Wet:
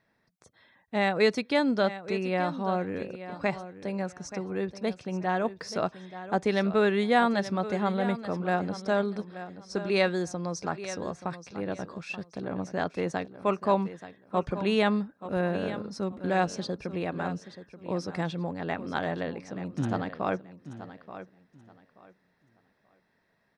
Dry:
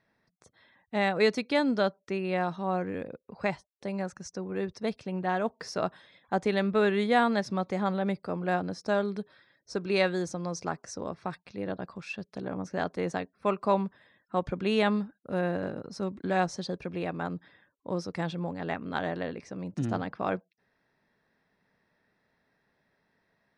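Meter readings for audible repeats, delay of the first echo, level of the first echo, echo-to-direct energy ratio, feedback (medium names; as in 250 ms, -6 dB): 2, 880 ms, -13.0 dB, -13.0 dB, 23%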